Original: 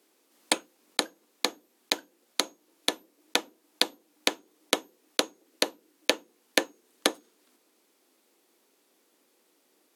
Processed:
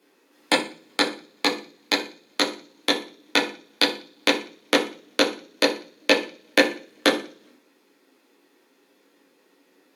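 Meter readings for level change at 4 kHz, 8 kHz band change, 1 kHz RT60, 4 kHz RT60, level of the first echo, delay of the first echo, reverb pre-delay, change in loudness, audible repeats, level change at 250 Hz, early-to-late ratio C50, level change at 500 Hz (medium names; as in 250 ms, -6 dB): +5.5 dB, -1.0 dB, 0.40 s, 0.55 s, no echo, no echo, 10 ms, +6.5 dB, no echo, +11.0 dB, 11.5 dB, +9.0 dB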